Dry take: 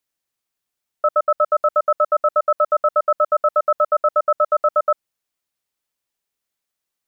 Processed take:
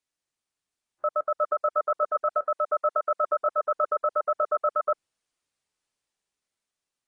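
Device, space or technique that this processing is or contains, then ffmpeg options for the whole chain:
low-bitrate web radio: -filter_complex "[0:a]asettb=1/sr,asplit=3[link_01][link_02][link_03];[link_01]atrim=end=2.344[link_04];[link_02]atrim=start=2.34:end=3.26,asetpts=PTS-STARTPTS,afade=type=in:duration=0.004:curve=qsin,afade=type=out:start_time=0.916:duration=0.004:curve=qsin,highpass=frequency=270:poles=1[link_05];[link_03]atrim=start=3.256[link_06];[link_04][link_05]acrossfade=duration=0.004:curve1=hsin:curve2=qsin[link_07];[link_07][link_06]acrossfade=duration=0.004:curve1=qsin:curve2=hsin,dynaudnorm=framelen=500:gausssize=7:maxgain=4.5dB,alimiter=limit=-13dB:level=0:latency=1:release=10,volume=-4.5dB" -ar 22050 -c:a aac -b:a 32k

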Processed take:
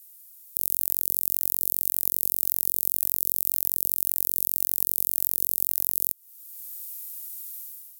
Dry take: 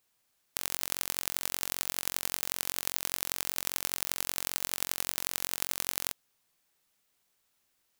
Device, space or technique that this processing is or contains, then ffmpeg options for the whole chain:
FM broadcast chain: -filter_complex "[0:a]highpass=60,dynaudnorm=framelen=110:gausssize=7:maxgain=12dB,acrossover=split=360|910[link_01][link_02][link_03];[link_01]acompressor=threshold=-55dB:ratio=4[link_04];[link_02]acompressor=threshold=-50dB:ratio=4[link_05];[link_03]acompressor=threshold=-39dB:ratio=4[link_06];[link_04][link_05][link_06]amix=inputs=3:normalize=0,aemphasis=mode=production:type=75fm,alimiter=limit=-3dB:level=0:latency=1:release=195,asoftclip=type=hard:threshold=-6.5dB,lowpass=frequency=15000:width=0.5412,lowpass=frequency=15000:width=1.3066,aemphasis=mode=production:type=75fm,volume=-4.5dB"

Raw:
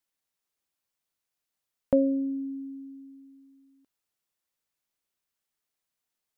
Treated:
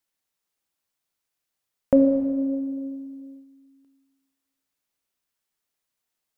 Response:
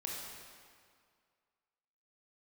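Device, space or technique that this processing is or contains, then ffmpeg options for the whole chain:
keyed gated reverb: -filter_complex "[0:a]asplit=3[link_01][link_02][link_03];[1:a]atrim=start_sample=2205[link_04];[link_02][link_04]afir=irnorm=-1:irlink=0[link_05];[link_03]apad=whole_len=281001[link_06];[link_05][link_06]sidechaingate=range=-7dB:threshold=-55dB:ratio=16:detection=peak,volume=1dB[link_07];[link_01][link_07]amix=inputs=2:normalize=0"

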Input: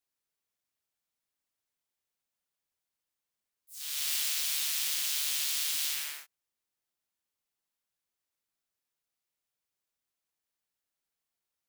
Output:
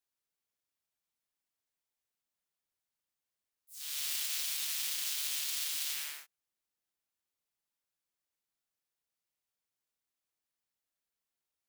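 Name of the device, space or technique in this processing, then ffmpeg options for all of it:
limiter into clipper: -af "alimiter=limit=-20dB:level=0:latency=1:release=21,asoftclip=type=hard:threshold=-21.5dB,volume=-3dB"

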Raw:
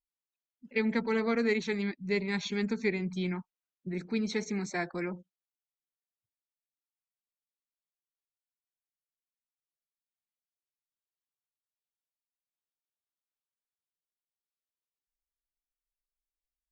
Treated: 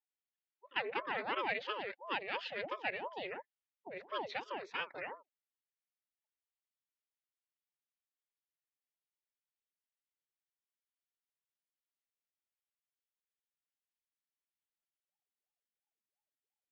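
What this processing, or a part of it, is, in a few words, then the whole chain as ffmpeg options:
voice changer toy: -af "aeval=exprs='val(0)*sin(2*PI*520*n/s+520*0.65/2.9*sin(2*PI*2.9*n/s))':channel_layout=same,highpass=490,equalizer=frequency=670:width_type=q:width=4:gain=-6,equalizer=frequency=1100:width_type=q:width=4:gain=-5,equalizer=frequency=1900:width_type=q:width=4:gain=3,equalizer=frequency=3100:width_type=q:width=4:gain=3,lowpass=frequency=3700:width=0.5412,lowpass=frequency=3700:width=1.3066,volume=-1.5dB"

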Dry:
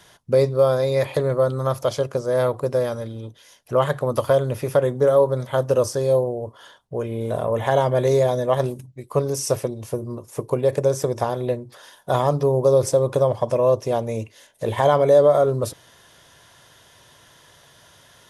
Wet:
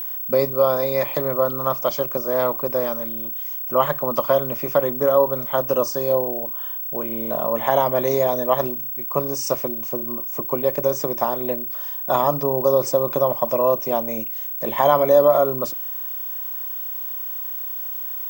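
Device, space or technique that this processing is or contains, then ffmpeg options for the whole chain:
old television with a line whistle: -filter_complex "[0:a]asettb=1/sr,asplit=3[link_01][link_02][link_03];[link_01]atrim=end=6.454[link_04];[link_02]atrim=start=6.45:end=7.06,asetpts=PTS-STARTPTS,afade=type=in:duration=0.004:curve=qsin,afade=type=out:start_time=0.606:duration=0.004:curve=qsin,equalizer=frequency=5500:width_type=o:width=1:gain=-5.5[link_05];[link_03]atrim=start=7.056[link_06];[link_04][link_05]acrossfade=duration=0.004:curve1=hsin:curve2=qsin[link_07];[link_07][link_06]acrossfade=duration=0.004:curve1=qsin:curve2=hsin,highpass=frequency=180:width=0.5412,highpass=frequency=180:width=1.3066,equalizer=frequency=450:width_type=q:width=4:gain=-9,equalizer=frequency=1100:width_type=q:width=4:gain=4,equalizer=frequency=1600:width_type=q:width=4:gain=-4,equalizer=frequency=3900:width_type=q:width=4:gain=-6,lowpass=frequency=7200:width=0.5412,lowpass=frequency=7200:width=1.3066,aeval=exprs='val(0)+0.0398*sin(2*PI*15734*n/s)':channel_layout=same,volume=2dB"

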